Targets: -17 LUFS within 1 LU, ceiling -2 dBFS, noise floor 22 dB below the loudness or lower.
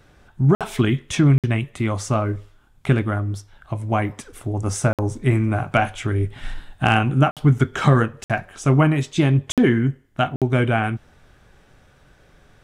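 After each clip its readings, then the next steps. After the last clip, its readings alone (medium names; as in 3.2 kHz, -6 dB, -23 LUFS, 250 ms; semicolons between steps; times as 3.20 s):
dropouts 7; longest dropout 57 ms; loudness -20.5 LUFS; peak level -4.0 dBFS; loudness target -17.0 LUFS
-> interpolate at 0.55/1.38/4.93/7.31/8.24/9.52/10.36 s, 57 ms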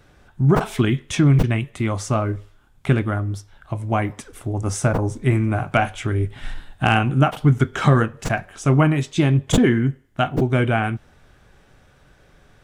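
dropouts 0; loudness -20.5 LUFS; peak level -4.0 dBFS; loudness target -17.0 LUFS
-> trim +3.5 dB; peak limiter -2 dBFS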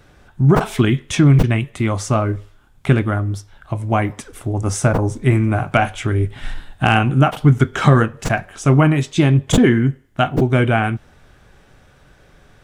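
loudness -17.0 LUFS; peak level -2.0 dBFS; noise floor -51 dBFS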